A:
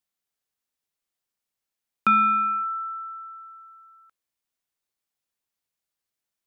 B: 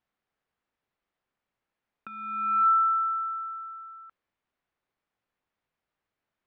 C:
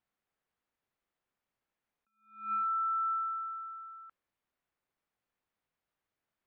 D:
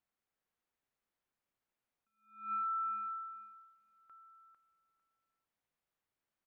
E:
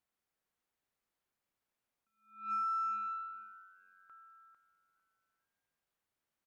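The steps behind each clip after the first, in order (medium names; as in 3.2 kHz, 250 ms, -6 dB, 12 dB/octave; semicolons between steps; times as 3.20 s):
level-controlled noise filter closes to 2 kHz, open at -24 dBFS; compressor with a negative ratio -28 dBFS, ratio -0.5; trim +3.5 dB
peak limiter -25 dBFS, peak gain reduction 8.5 dB; attacks held to a fixed rise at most 130 dB/s; trim -3.5 dB
feedback delay 450 ms, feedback 18%, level -6.5 dB; trim -4 dB
frequency-shifting echo 432 ms, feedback 49%, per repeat +93 Hz, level -24 dB; Chebyshev shaper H 4 -33 dB, 7 -41 dB, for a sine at -32 dBFS; trim +1.5 dB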